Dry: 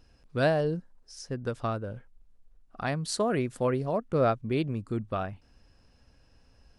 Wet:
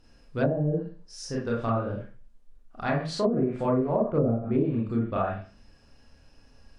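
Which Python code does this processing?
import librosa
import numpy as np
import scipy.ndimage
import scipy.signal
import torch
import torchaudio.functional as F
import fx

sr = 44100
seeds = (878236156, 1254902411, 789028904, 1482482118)

y = fx.rev_schroeder(x, sr, rt60_s=0.38, comb_ms=27, drr_db=-4.5)
y = fx.env_lowpass_down(y, sr, base_hz=320.0, full_db=-16.0)
y = y * librosa.db_to_amplitude(-1.0)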